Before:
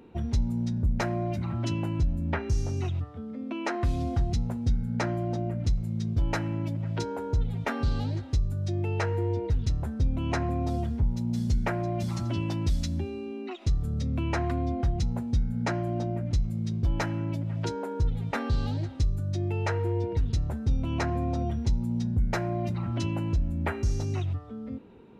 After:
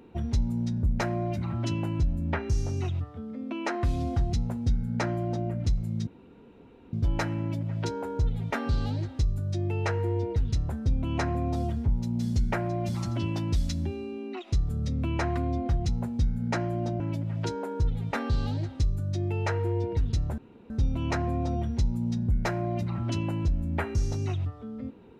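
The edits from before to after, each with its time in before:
6.07 s: insert room tone 0.86 s
16.14–17.20 s: delete
20.58 s: insert room tone 0.32 s

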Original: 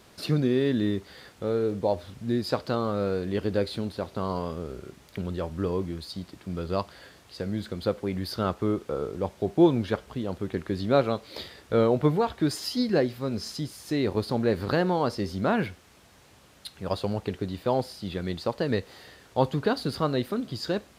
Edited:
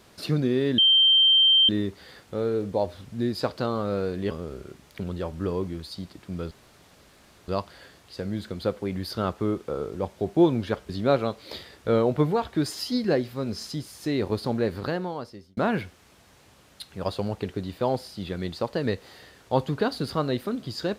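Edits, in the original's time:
0.78 s: add tone 3.14 kHz -14.5 dBFS 0.91 s
3.40–4.49 s: delete
6.69 s: insert room tone 0.97 s
10.10–10.74 s: delete
14.36–15.42 s: fade out

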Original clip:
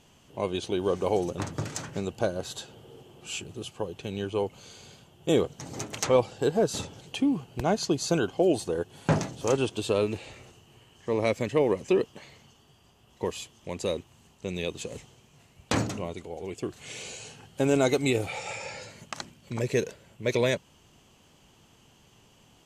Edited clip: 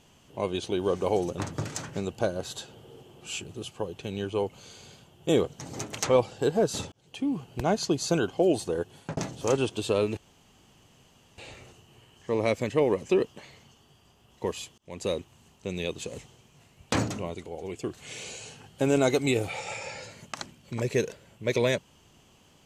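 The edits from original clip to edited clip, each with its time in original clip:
6.92–7.46 s: fade in
8.90–9.17 s: fade out
10.17 s: insert room tone 1.21 s
13.57–13.85 s: fade in

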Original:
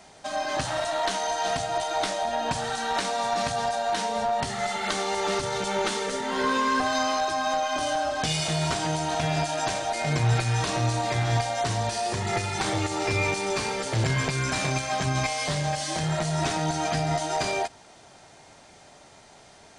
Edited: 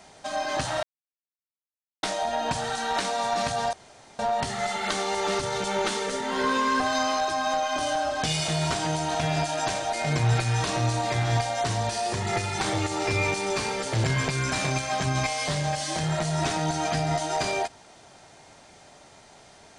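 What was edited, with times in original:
0.83–2.03 s: mute
3.73–4.19 s: room tone

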